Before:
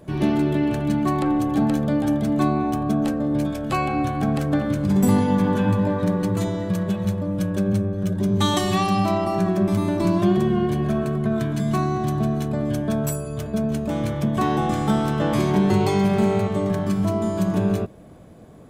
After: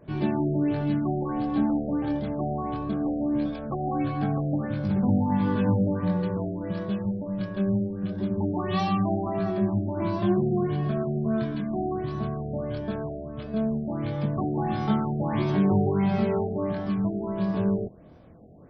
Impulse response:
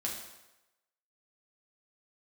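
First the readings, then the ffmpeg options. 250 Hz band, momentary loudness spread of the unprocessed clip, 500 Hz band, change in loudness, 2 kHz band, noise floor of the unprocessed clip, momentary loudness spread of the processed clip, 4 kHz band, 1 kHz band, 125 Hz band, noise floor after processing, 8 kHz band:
-5.0 dB, 5 LU, -5.0 dB, -5.0 dB, -8.0 dB, -32 dBFS, 7 LU, -11.5 dB, -6.0 dB, -5.0 dB, -38 dBFS, under -25 dB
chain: -af "flanger=delay=19:depth=6.3:speed=0.2,afftfilt=real='re*lt(b*sr/1024,770*pow(6100/770,0.5+0.5*sin(2*PI*1.5*pts/sr)))':imag='im*lt(b*sr/1024,770*pow(6100/770,0.5+0.5*sin(2*PI*1.5*pts/sr)))':win_size=1024:overlap=0.75,volume=-2dB"

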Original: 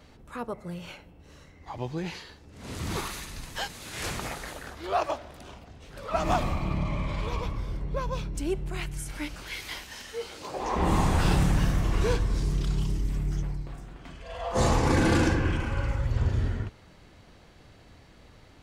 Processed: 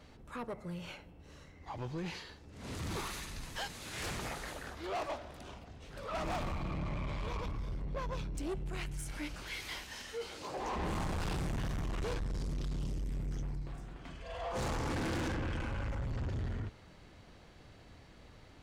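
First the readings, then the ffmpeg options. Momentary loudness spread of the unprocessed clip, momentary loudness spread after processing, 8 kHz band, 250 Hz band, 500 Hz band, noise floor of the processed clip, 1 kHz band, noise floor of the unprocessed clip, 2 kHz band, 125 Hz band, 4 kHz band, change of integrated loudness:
18 LU, 19 LU, -8.5 dB, -10.5 dB, -9.5 dB, -57 dBFS, -10.0 dB, -54 dBFS, -8.0 dB, -10.5 dB, -7.0 dB, -10.0 dB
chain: -af "highshelf=f=11k:g=-5,asoftclip=type=tanh:threshold=-30.5dB,volume=-3dB"

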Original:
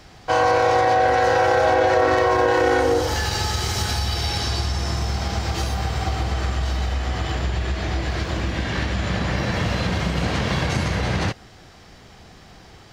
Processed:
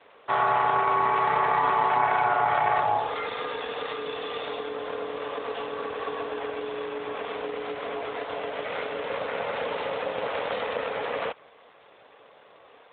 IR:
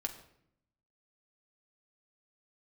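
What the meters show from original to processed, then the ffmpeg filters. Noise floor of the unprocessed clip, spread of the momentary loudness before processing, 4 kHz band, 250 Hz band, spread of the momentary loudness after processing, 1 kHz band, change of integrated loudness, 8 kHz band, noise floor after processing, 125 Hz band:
-46 dBFS, 8 LU, -11.0 dB, -14.0 dB, 11 LU, -2.5 dB, -6.0 dB, under -40 dB, -54 dBFS, -23.5 dB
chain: -af "aeval=exprs='val(0)*sin(2*PI*360*n/s)':c=same,lowshelf=f=390:t=q:w=1.5:g=-13,volume=-1.5dB" -ar 8000 -c:a libopencore_amrnb -b:a 12200

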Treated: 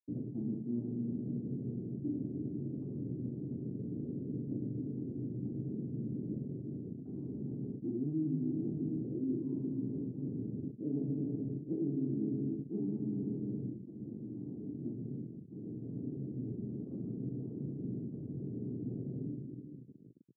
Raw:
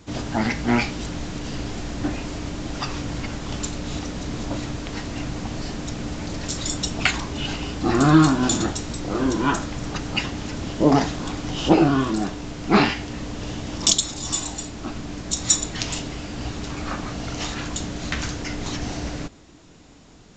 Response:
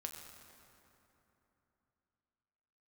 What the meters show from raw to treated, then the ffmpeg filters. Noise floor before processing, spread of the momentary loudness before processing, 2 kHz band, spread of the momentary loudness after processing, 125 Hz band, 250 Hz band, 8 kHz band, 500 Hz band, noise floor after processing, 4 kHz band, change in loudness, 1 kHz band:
-48 dBFS, 13 LU, under -40 dB, 8 LU, -11.0 dB, -12.0 dB, under -40 dB, -16.5 dB, -49 dBFS, under -40 dB, -14.5 dB, under -40 dB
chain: -filter_complex "[1:a]atrim=start_sample=2205,asetrate=48510,aresample=44100[a];[0:a][a]afir=irnorm=-1:irlink=0,areverse,acompressor=threshold=-30dB:ratio=12,areverse,anlmdn=0.398,acrusher=bits=7:mix=0:aa=0.5,asuperpass=centerf=220:order=8:qfactor=0.77"

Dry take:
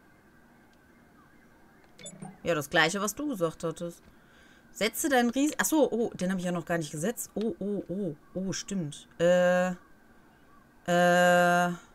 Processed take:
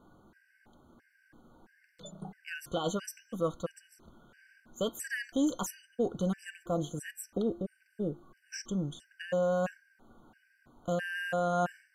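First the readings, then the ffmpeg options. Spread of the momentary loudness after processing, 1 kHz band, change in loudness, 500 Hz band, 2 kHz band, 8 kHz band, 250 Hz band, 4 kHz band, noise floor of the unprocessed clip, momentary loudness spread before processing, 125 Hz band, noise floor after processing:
14 LU, -8.0 dB, -7.0 dB, -6.5 dB, -10.0 dB, -9.0 dB, -5.0 dB, -9.0 dB, -59 dBFS, 15 LU, -4.5 dB, -70 dBFS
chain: -af "alimiter=limit=-19dB:level=0:latency=1:release=23,highshelf=f=4.1k:g=-6.5,bandreject=f=349:t=h:w=4,bandreject=f=698:t=h:w=4,bandreject=f=1.047k:t=h:w=4,bandreject=f=1.396k:t=h:w=4,bandreject=f=1.745k:t=h:w=4,bandreject=f=2.094k:t=h:w=4,bandreject=f=2.443k:t=h:w=4,bandreject=f=2.792k:t=h:w=4,bandreject=f=3.141k:t=h:w=4,bandreject=f=3.49k:t=h:w=4,bandreject=f=3.839k:t=h:w=4,bandreject=f=4.188k:t=h:w=4,bandreject=f=4.537k:t=h:w=4,bandreject=f=4.886k:t=h:w=4,bandreject=f=5.235k:t=h:w=4,bandreject=f=5.584k:t=h:w=4,bandreject=f=5.933k:t=h:w=4,bandreject=f=6.282k:t=h:w=4,afftfilt=real='re*gt(sin(2*PI*1.5*pts/sr)*(1-2*mod(floor(b*sr/1024/1500),2)),0)':imag='im*gt(sin(2*PI*1.5*pts/sr)*(1-2*mod(floor(b*sr/1024/1500),2)),0)':win_size=1024:overlap=0.75"

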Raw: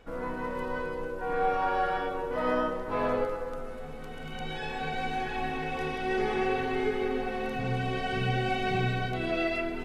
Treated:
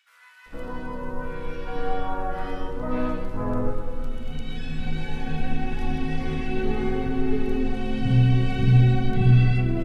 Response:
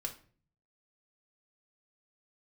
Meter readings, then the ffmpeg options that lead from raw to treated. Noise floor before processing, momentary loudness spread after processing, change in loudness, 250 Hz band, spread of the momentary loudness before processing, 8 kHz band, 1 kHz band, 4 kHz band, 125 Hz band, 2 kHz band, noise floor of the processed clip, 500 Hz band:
-39 dBFS, 16 LU, +5.5 dB, +7.5 dB, 8 LU, n/a, -3.5 dB, -0.5 dB, +15.0 dB, -3.0 dB, -48 dBFS, -1.0 dB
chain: -filter_complex "[0:a]acrossover=split=1700[a][b];[a]adelay=460[c];[c][b]amix=inputs=2:normalize=0,asplit=2[d][e];[1:a]atrim=start_sample=2205[f];[e][f]afir=irnorm=-1:irlink=0,volume=-6.5dB[g];[d][g]amix=inputs=2:normalize=0,asubboost=boost=6:cutoff=230,volume=-2.5dB"

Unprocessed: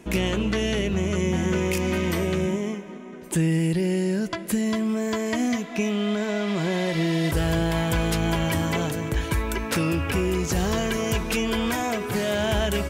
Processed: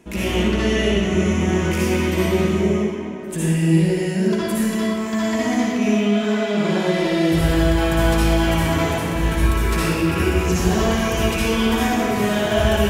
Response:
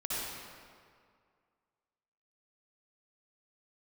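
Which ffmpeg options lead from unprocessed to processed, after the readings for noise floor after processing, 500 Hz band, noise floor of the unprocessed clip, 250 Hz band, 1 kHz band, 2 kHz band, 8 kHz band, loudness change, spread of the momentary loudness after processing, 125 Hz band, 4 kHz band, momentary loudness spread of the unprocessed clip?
-25 dBFS, +5.5 dB, -38 dBFS, +5.5 dB, +6.5 dB, +5.0 dB, +3.0 dB, +5.5 dB, 4 LU, +5.0 dB, +4.5 dB, 3 LU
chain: -filter_complex "[1:a]atrim=start_sample=2205[a];[0:a][a]afir=irnorm=-1:irlink=0"

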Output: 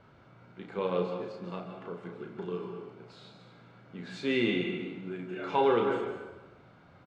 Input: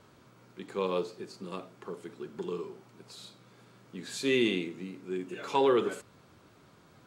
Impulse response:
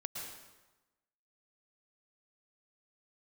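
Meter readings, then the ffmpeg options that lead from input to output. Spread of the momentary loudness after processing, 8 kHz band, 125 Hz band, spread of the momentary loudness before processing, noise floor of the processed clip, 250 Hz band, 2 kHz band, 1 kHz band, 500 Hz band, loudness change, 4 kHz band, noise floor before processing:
21 LU, under -10 dB, +3.0 dB, 21 LU, -58 dBFS, 0.0 dB, +0.5 dB, +1.5 dB, 0.0 dB, -0.5 dB, -2.5 dB, -60 dBFS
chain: -filter_complex "[0:a]lowpass=2.7k,aecho=1:1:1.4:0.3,asplit=2[a][b];[1:a]atrim=start_sample=2205,adelay=34[c];[b][c]afir=irnorm=-1:irlink=0,volume=-1.5dB[d];[a][d]amix=inputs=2:normalize=0"

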